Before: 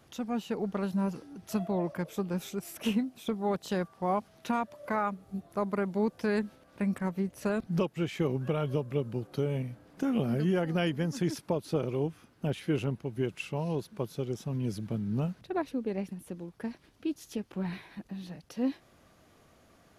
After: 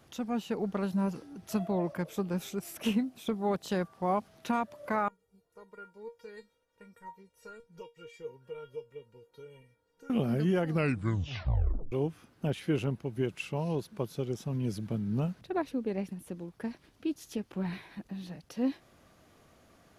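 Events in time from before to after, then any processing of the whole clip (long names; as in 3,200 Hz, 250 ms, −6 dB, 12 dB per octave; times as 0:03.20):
0:05.08–0:10.10: tuned comb filter 470 Hz, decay 0.18 s, mix 100%
0:10.67: tape stop 1.25 s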